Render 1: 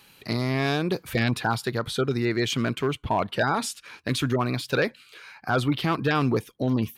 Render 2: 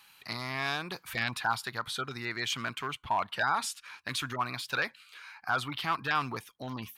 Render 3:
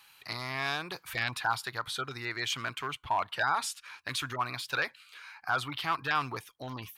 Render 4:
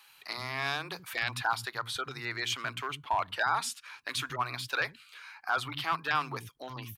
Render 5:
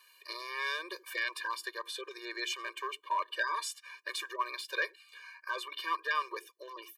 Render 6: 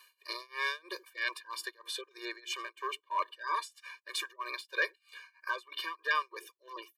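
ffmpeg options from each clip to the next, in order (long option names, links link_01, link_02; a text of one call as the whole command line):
ffmpeg -i in.wav -af "lowshelf=frequency=670:width_type=q:width=1.5:gain=-11,volume=-4dB" out.wav
ffmpeg -i in.wav -af "equalizer=frequency=210:width_type=o:width=0.37:gain=-11" out.wav
ffmpeg -i in.wav -filter_complex "[0:a]acrossover=split=240[link_01][link_02];[link_01]adelay=80[link_03];[link_03][link_02]amix=inputs=2:normalize=0" out.wav
ffmpeg -i in.wav -af "afftfilt=real='re*eq(mod(floor(b*sr/1024/310),2),1)':imag='im*eq(mod(floor(b*sr/1024/310),2),1)':win_size=1024:overlap=0.75" out.wav
ffmpeg -i in.wav -af "tremolo=f=3.1:d=0.95,volume=3dB" out.wav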